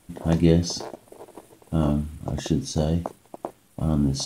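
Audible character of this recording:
background noise floor −59 dBFS
spectral slope −6.5 dB per octave

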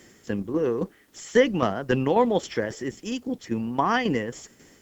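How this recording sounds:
tremolo saw down 3.7 Hz, depth 60%
a quantiser's noise floor 12 bits, dither triangular
Opus

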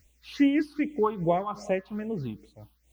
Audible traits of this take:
a quantiser's noise floor 12 bits, dither triangular
phaser sweep stages 6, 2.5 Hz, lowest notch 500–1,400 Hz
amplitude modulation by smooth noise

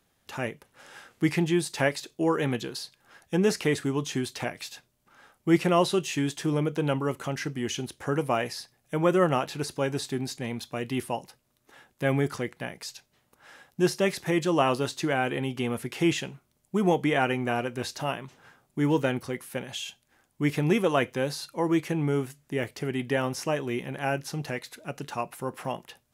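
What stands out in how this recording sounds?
background noise floor −71 dBFS
spectral slope −5.5 dB per octave

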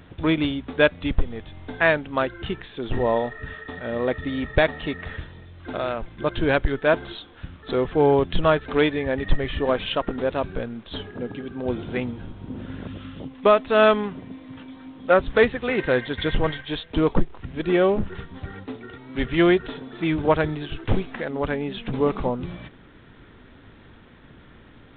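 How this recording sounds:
a quantiser's noise floor 8 bits, dither none
G.726

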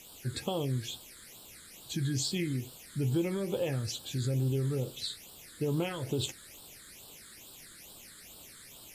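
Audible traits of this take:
a quantiser's noise floor 8 bits, dither triangular
phaser sweep stages 8, 2.3 Hz, lowest notch 770–2,000 Hz
AAC

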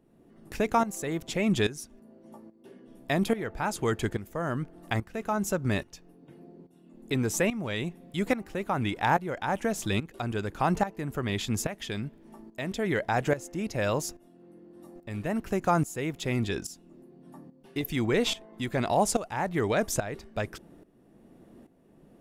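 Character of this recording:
tremolo saw up 1.2 Hz, depth 80%

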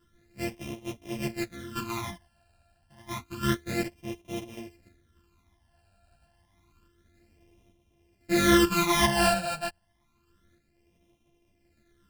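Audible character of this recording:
a buzz of ramps at a fixed pitch in blocks of 128 samples
phaser sweep stages 12, 0.29 Hz, lowest notch 350–1,500 Hz
sample-and-hold tremolo
a shimmering, thickened sound

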